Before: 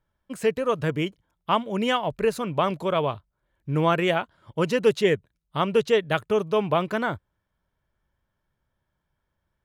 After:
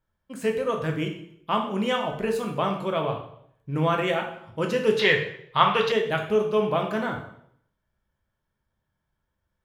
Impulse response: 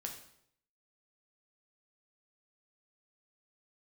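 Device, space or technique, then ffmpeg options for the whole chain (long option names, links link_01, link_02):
bathroom: -filter_complex "[1:a]atrim=start_sample=2205[link_01];[0:a][link_01]afir=irnorm=-1:irlink=0,asettb=1/sr,asplit=3[link_02][link_03][link_04];[link_02]atrim=end=4.994[link_05];[link_03]atrim=start=4.99:end=5.92,asetpts=PTS-STARTPTS,afade=type=in:duration=0.004:curve=qsin,afade=type=out:start_time=0.926:duration=0.004:curve=qsin,equalizer=frequency=125:width_type=o:width=1:gain=5,equalizer=frequency=250:width_type=o:width=1:gain=-10,equalizer=frequency=1000:width_type=o:width=1:gain=10,equalizer=frequency=2000:width_type=o:width=1:gain=8,equalizer=frequency=4000:width_type=o:width=1:gain=10,equalizer=frequency=8000:width_type=o:width=1:gain=-7[link_06];[link_04]atrim=start=5.916[link_07];[link_05][link_06]acrossfade=duration=0.004:curve1=hsin:curve2=qsin[link_08];[link_08][link_07]acrossfade=duration=0.004:curve1=qsin:curve2=hsin"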